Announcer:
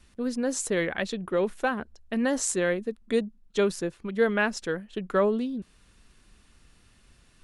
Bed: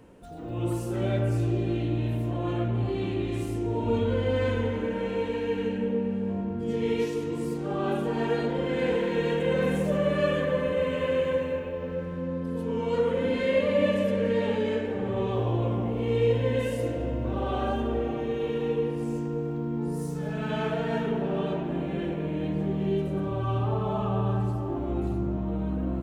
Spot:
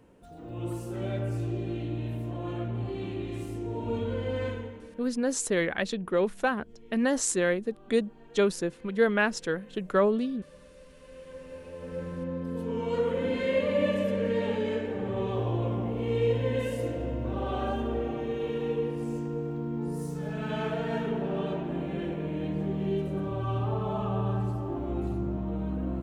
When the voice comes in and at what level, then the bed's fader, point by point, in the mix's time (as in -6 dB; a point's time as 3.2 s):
4.80 s, 0.0 dB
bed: 4.46 s -5.5 dB
5.15 s -27 dB
10.96 s -27 dB
12.03 s -2.5 dB